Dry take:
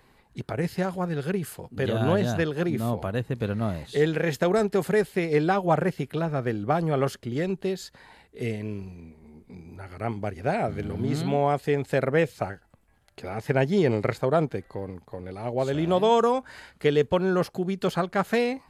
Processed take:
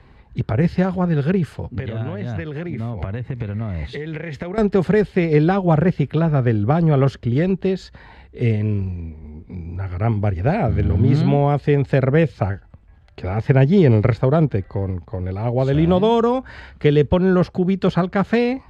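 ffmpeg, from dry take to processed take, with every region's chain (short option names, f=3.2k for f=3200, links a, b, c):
-filter_complex "[0:a]asettb=1/sr,asplit=3[a][b][c];[a]atrim=end=1.744[d];[b]atrim=start=1.74:end=4.58,asetpts=PTS-STARTPTS,afade=t=in:d=0.004:c=qsin,afade=t=out:st=2.836:d=0.004:c=qsin,highpass=63,equalizer=f=2.1k:t=o:w=0.35:g=10.5,acompressor=threshold=-32dB:ratio=16:attack=3.2:release=140:knee=1:detection=peak[e];[c]atrim=start=4.576[f];[d][e]acrossfade=d=0.004:c1=hsin:c2=qsin[g];[g][f]acrossfade=d=0.004:c1=qsin:c2=hsin,lowpass=3.8k,equalizer=f=65:t=o:w=2.1:g=14.5,acrossover=split=420|3000[h][i][j];[i]acompressor=threshold=-28dB:ratio=2[k];[h][k][j]amix=inputs=3:normalize=0,volume=6dB"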